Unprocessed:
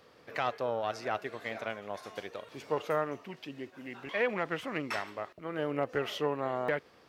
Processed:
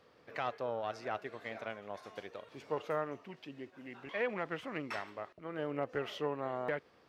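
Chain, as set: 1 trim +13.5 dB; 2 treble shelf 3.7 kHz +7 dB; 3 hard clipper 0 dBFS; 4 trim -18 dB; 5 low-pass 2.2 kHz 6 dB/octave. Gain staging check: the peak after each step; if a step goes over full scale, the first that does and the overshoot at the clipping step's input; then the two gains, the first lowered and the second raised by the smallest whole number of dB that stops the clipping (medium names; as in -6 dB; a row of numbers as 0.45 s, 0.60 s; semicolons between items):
-4.0 dBFS, -3.0 dBFS, -3.0 dBFS, -21.0 dBFS, -22.5 dBFS; nothing clips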